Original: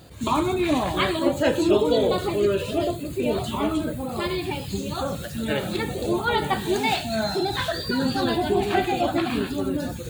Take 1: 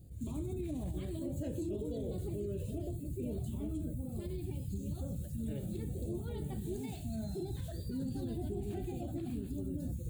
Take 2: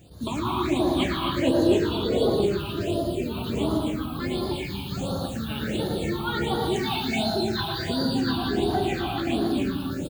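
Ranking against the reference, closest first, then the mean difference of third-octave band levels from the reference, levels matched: 2, 1; 5.5, 8.5 dB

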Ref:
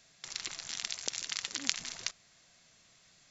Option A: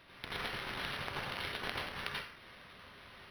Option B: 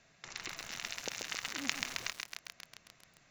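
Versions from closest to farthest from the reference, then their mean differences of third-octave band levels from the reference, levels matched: B, A; 8.5, 14.5 dB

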